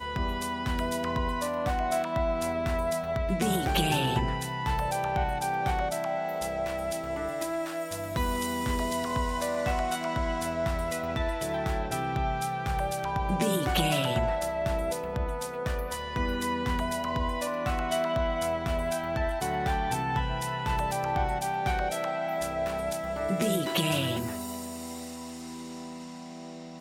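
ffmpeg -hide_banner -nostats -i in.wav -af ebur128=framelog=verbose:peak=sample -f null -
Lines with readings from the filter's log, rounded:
Integrated loudness:
  I:         -29.8 LUFS
  Threshold: -40.0 LUFS
Loudness range:
  LRA:         2.7 LU
  Threshold: -49.8 LUFS
  LRA low:   -31.1 LUFS
  LRA high:  -28.4 LUFS
Sample peak:
  Peak:      -12.6 dBFS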